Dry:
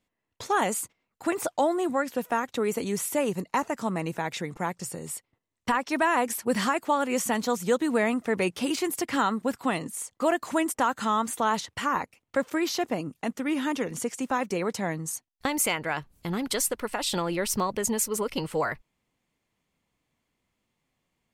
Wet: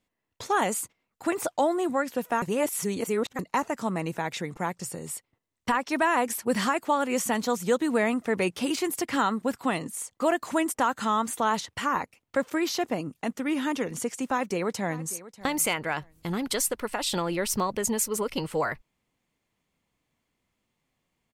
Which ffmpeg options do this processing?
ffmpeg -i in.wav -filter_complex "[0:a]asplit=2[link_01][link_02];[link_02]afade=type=in:start_time=14.28:duration=0.01,afade=type=out:start_time=15.14:duration=0.01,aecho=0:1:590|1180:0.141254|0.0282508[link_03];[link_01][link_03]amix=inputs=2:normalize=0,asplit=3[link_04][link_05][link_06];[link_04]atrim=end=2.422[link_07];[link_05]atrim=start=2.418:end=3.392,asetpts=PTS-STARTPTS,areverse[link_08];[link_06]atrim=start=3.388[link_09];[link_07][link_08]acrossfade=duration=0.004:curve1=hsin:curve2=hsin[link_10];[link_10][link_09]acrossfade=duration=0.004:curve1=hsin:curve2=hsin" out.wav

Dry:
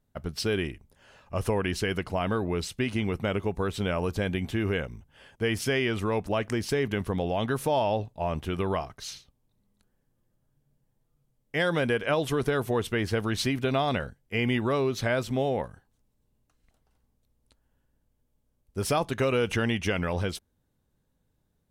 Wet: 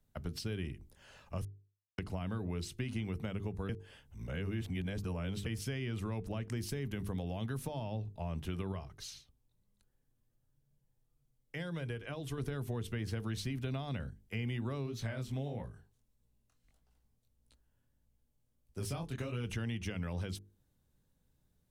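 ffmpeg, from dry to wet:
ffmpeg -i in.wav -filter_complex "[0:a]asettb=1/sr,asplit=3[link_01][link_02][link_03];[link_01]atrim=end=6.564[link_04];[link_02]atrim=start=6.56:end=7.58,asetpts=PTS-STARTPTS,afade=type=in:duration=0.004:curve=qsin,afade=type=out:start_time=1.016:duration=0.004:curve=qsin,highshelf=frequency=11000:gain=9.5[link_05];[link_03]atrim=start=7.576[link_06];[link_04][link_05]acrossfade=duration=0.004:curve1=hsin:curve2=qsin[link_07];[link_07][link_06]acrossfade=duration=0.004:curve1=qsin:curve2=hsin,asettb=1/sr,asplit=3[link_08][link_09][link_10];[link_08]atrim=end=8.724[link_11];[link_09]atrim=start=8.72:end=12.38,asetpts=PTS-STARTPTS,afade=type=in:duration=0.004:curve=qsin,afade=type=out:start_time=3.656:duration=0.004:curve=qsin,flanger=delay=1.8:depth=1.1:regen=-66:speed=1:shape=triangular[link_12];[link_10]atrim=start=12.376[link_13];[link_11][link_12]acrossfade=duration=0.004:curve1=hsin:curve2=qsin[link_14];[link_14][link_13]acrossfade=duration=0.004:curve1=qsin:curve2=hsin,asplit=3[link_15][link_16][link_17];[link_15]afade=type=out:start_time=14.85:duration=0.02[link_18];[link_16]flanger=delay=17:depth=7.8:speed=1.6,afade=type=in:start_time=14.85:duration=0.02,afade=type=out:start_time=19.43:duration=0.02[link_19];[link_17]afade=type=in:start_time=19.43:duration=0.02[link_20];[link_18][link_19][link_20]amix=inputs=3:normalize=0,asplit=5[link_21][link_22][link_23][link_24][link_25];[link_21]atrim=end=1.45,asetpts=PTS-STARTPTS,afade=type=out:start_time=1.446:duration=0.004:curve=hsin[link_26];[link_22]atrim=start=1.45:end=1.98,asetpts=PTS-STARTPTS,volume=0[link_27];[link_23]atrim=start=1.98:end=3.692,asetpts=PTS-STARTPTS,afade=type=in:duration=0.004:curve=hsin[link_28];[link_24]atrim=start=3.688:end=5.462,asetpts=PTS-STARTPTS,areverse[link_29];[link_25]atrim=start=5.458[link_30];[link_26][link_27][link_28]concat=n=3:v=0:a=1[link_31];[link_31][link_29]acrossfade=duration=0.004:curve1=hsin:curve2=hsin[link_32];[link_32][link_30]acrossfade=duration=0.004:curve1=hsin:curve2=hsin,equalizer=frequency=740:width=0.32:gain=-5.5,bandreject=frequency=50:width_type=h:width=6,bandreject=frequency=100:width_type=h:width=6,bandreject=frequency=150:width_type=h:width=6,bandreject=frequency=200:width_type=h:width=6,bandreject=frequency=250:width_type=h:width=6,bandreject=frequency=300:width_type=h:width=6,bandreject=frequency=350:width_type=h:width=6,bandreject=frequency=400:width_type=h:width=6,bandreject=frequency=450:width_type=h:width=6,acrossover=split=92|230[link_33][link_34][link_35];[link_33]acompressor=threshold=-47dB:ratio=4[link_36];[link_34]acompressor=threshold=-40dB:ratio=4[link_37];[link_35]acompressor=threshold=-45dB:ratio=4[link_38];[link_36][link_37][link_38]amix=inputs=3:normalize=0,volume=1dB" out.wav

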